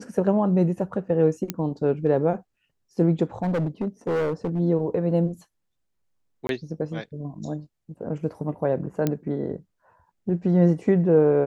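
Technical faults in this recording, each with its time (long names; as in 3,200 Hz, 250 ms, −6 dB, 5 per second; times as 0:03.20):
0:01.50: click −11 dBFS
0:03.42–0:04.60: clipping −21 dBFS
0:06.47–0:06.49: drop-out 22 ms
0:09.07: click −10 dBFS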